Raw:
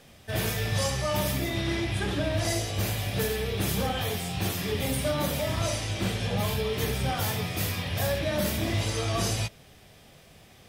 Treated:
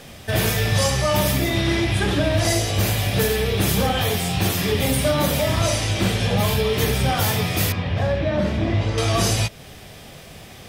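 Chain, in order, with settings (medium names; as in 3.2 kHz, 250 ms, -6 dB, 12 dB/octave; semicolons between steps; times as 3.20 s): in parallel at +1.5 dB: compression, threshold -36 dBFS, peak gain reduction 12.5 dB; 7.72–8.98 s: on the sum: tape spacing loss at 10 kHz 27 dB; trim +5.5 dB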